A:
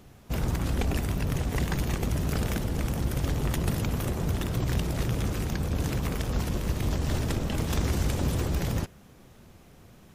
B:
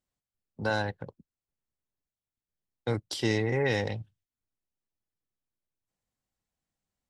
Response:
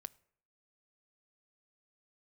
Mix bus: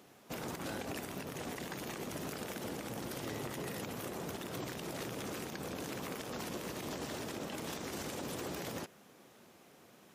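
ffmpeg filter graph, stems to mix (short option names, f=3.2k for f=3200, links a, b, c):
-filter_complex "[0:a]highpass=280,volume=-2.5dB[a];[1:a]volume=-16.5dB[b];[a][b]amix=inputs=2:normalize=0,alimiter=level_in=7dB:limit=-24dB:level=0:latency=1:release=81,volume=-7dB"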